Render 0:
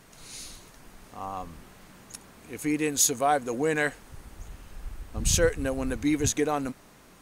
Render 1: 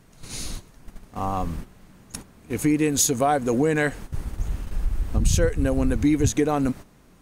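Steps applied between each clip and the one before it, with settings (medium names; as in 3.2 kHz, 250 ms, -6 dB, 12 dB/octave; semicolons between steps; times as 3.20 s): gate -45 dBFS, range -12 dB; bass shelf 330 Hz +10.5 dB; compression 3:1, threshold -25 dBFS, peak gain reduction 10.5 dB; trim +6.5 dB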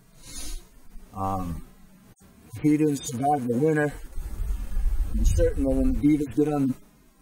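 harmonic-percussive separation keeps harmonic; treble shelf 9.7 kHz +8.5 dB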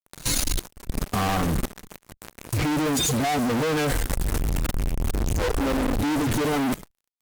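fuzz box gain 49 dB, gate -47 dBFS; Chebyshev shaper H 5 -21 dB, 7 -19 dB, 8 -19 dB, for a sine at -7 dBFS; level held to a coarse grid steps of 19 dB; trim -4 dB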